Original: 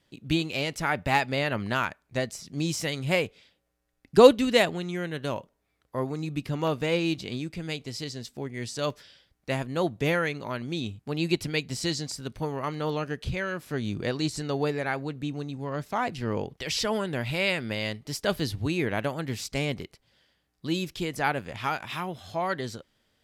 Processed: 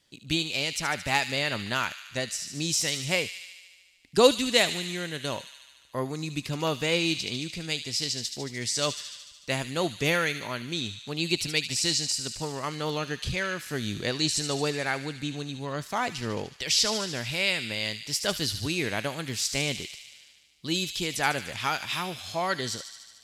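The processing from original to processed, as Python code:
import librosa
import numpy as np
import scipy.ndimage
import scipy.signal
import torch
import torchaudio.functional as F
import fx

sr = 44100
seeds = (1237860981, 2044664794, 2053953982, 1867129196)

y = fx.peak_eq(x, sr, hz=6700.0, db=12.0, octaves=2.6)
y = fx.echo_wet_highpass(y, sr, ms=74, feedback_pct=73, hz=2500.0, wet_db=-8.0)
y = fx.rider(y, sr, range_db=3, speed_s=2.0)
y = y * librosa.db_to_amplitude(-4.0)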